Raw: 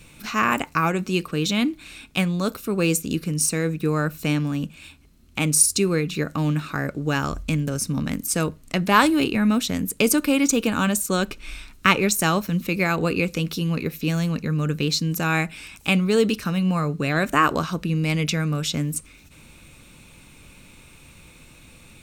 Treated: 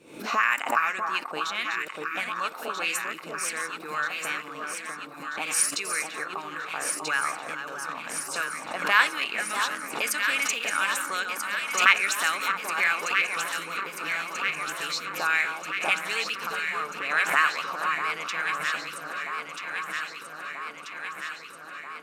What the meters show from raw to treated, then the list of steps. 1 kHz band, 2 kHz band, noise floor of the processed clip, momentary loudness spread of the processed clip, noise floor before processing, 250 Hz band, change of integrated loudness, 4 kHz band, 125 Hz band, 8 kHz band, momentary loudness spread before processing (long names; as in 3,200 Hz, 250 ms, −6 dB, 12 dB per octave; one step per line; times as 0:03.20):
−1.5 dB, +3.0 dB, −42 dBFS, 12 LU, −49 dBFS, −22.5 dB, −4.5 dB, −2.5 dB, −29.5 dB, −5.5 dB, 7 LU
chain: delay that plays each chunk backwards 321 ms, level −9 dB
envelope filter 360–1,900 Hz, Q 2.2, up, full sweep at −16.5 dBFS
RIAA equalisation recording
on a send: delay that swaps between a low-pass and a high-pass 643 ms, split 1,300 Hz, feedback 82%, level −4.5 dB
on the sum: background raised ahead of every attack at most 96 dB per second
level +1 dB